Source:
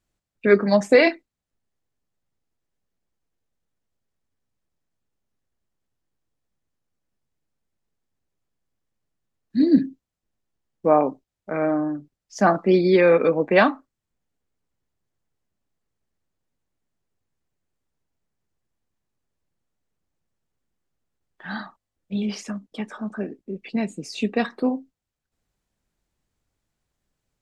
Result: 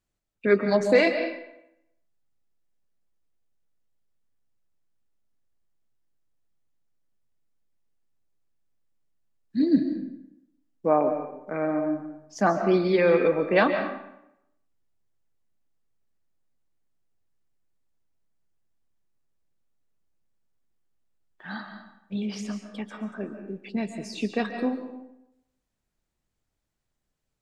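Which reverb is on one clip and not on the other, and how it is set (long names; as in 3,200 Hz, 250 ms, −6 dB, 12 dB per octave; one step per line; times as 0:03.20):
comb and all-pass reverb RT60 0.82 s, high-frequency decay 0.75×, pre-delay 100 ms, DRR 7 dB
level −4.5 dB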